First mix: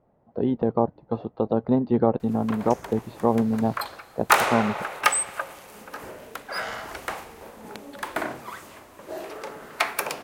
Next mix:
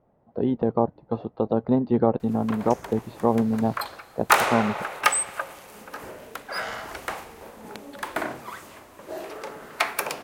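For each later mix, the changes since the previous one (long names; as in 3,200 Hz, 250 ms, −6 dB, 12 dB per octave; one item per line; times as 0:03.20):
nothing changed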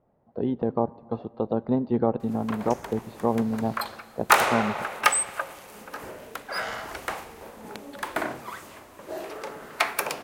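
speech −3.5 dB
reverb: on, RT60 1.9 s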